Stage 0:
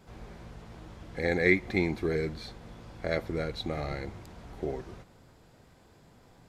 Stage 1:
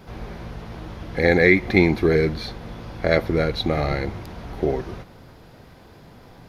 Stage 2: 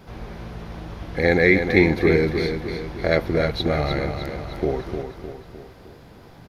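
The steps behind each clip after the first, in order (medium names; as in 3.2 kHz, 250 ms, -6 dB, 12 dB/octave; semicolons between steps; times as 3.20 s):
peaking EQ 7.7 kHz -14 dB 0.34 oct; loudness maximiser +12.5 dB; trim -1 dB
feedback delay 306 ms, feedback 49%, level -7 dB; trim -1 dB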